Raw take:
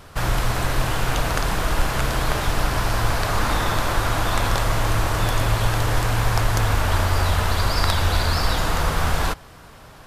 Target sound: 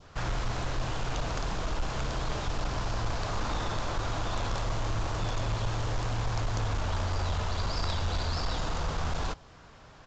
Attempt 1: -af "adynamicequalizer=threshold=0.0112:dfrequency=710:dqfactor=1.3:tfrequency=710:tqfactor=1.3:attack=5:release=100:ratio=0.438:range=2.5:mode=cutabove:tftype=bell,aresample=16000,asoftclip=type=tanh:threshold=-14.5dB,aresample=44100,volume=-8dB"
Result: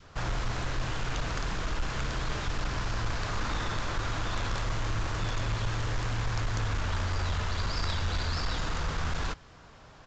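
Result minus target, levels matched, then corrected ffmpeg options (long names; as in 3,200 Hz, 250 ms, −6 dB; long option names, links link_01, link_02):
2,000 Hz band +3.0 dB
-af "adynamicequalizer=threshold=0.0112:dfrequency=1800:dqfactor=1.3:tfrequency=1800:tqfactor=1.3:attack=5:release=100:ratio=0.438:range=2.5:mode=cutabove:tftype=bell,aresample=16000,asoftclip=type=tanh:threshold=-14.5dB,aresample=44100,volume=-8dB"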